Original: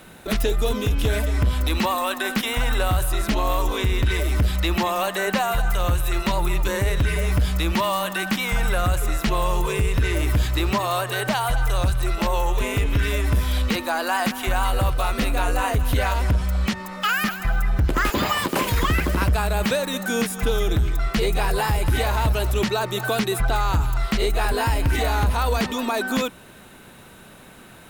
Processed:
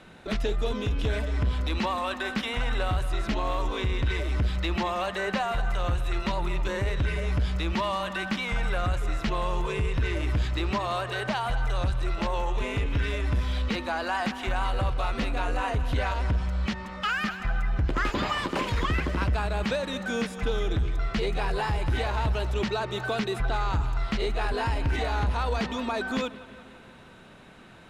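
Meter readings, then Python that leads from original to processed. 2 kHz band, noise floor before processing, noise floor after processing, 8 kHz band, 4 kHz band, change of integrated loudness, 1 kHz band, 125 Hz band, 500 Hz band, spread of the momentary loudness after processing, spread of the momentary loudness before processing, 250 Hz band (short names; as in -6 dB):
-5.5 dB, -45 dBFS, -48 dBFS, -14.5 dB, -6.5 dB, -6.0 dB, -5.5 dB, -5.5 dB, -5.5 dB, 2 LU, 2 LU, -5.5 dB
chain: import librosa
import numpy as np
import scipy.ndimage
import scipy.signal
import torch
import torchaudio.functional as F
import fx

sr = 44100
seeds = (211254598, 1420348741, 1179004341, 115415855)

p1 = scipy.signal.sosfilt(scipy.signal.butter(2, 5100.0, 'lowpass', fs=sr, output='sos'), x)
p2 = 10.0 ** (-28.0 / 20.0) * np.tanh(p1 / 10.0 ** (-28.0 / 20.0))
p3 = p1 + F.gain(torch.from_numpy(p2), -11.5).numpy()
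p4 = fx.echo_bbd(p3, sr, ms=174, stages=4096, feedback_pct=66, wet_db=-18.0)
y = F.gain(torch.from_numpy(p4), -6.5).numpy()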